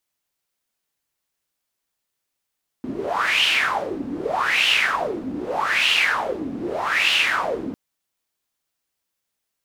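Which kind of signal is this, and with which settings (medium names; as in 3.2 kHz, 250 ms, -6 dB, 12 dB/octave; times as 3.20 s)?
wind-like swept noise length 4.90 s, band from 260 Hz, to 2.9 kHz, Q 6.5, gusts 4, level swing 11 dB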